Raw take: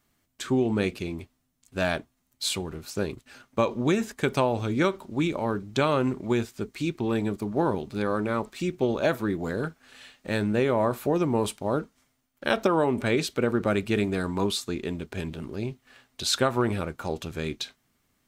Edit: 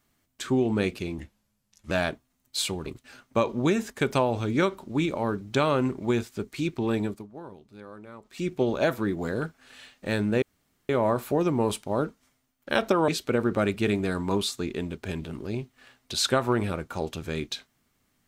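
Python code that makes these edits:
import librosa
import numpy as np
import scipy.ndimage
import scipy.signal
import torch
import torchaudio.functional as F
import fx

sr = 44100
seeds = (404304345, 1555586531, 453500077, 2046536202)

y = fx.edit(x, sr, fx.speed_span(start_s=1.18, length_s=0.6, speed=0.82),
    fx.cut(start_s=2.73, length_s=0.35),
    fx.fade_down_up(start_s=7.24, length_s=1.46, db=-17.5, fade_s=0.25),
    fx.insert_room_tone(at_s=10.64, length_s=0.47),
    fx.cut(start_s=12.83, length_s=0.34), tone=tone)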